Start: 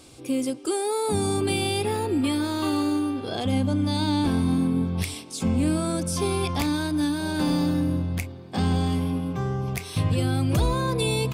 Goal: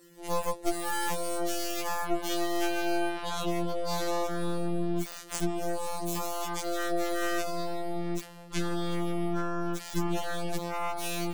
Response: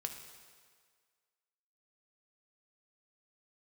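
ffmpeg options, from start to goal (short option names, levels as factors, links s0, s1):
-filter_complex "[0:a]asplit=2[s0][s1];[1:a]atrim=start_sample=2205[s2];[s1][s2]afir=irnorm=-1:irlink=0,volume=0.422[s3];[s0][s3]amix=inputs=2:normalize=0,afftfilt=real='hypot(re,im)*cos(PI*b)':imag='0':win_size=1024:overlap=0.75,acompressor=threshold=0.0447:ratio=12,aeval=exprs='0.224*(cos(1*acos(clip(val(0)/0.224,-1,1)))-cos(1*PI/2))+0.0158*(cos(2*acos(clip(val(0)/0.224,-1,1)))-cos(2*PI/2))+0.00794*(cos(4*acos(clip(val(0)/0.224,-1,1)))-cos(4*PI/2))+0.00282*(cos(5*acos(clip(val(0)/0.224,-1,1)))-cos(5*PI/2))+0.0794*(cos(8*acos(clip(val(0)/0.224,-1,1)))-cos(8*PI/2))':c=same,afftfilt=real='re*2.83*eq(mod(b,8),0)':imag='im*2.83*eq(mod(b,8),0)':win_size=2048:overlap=0.75,volume=0.422"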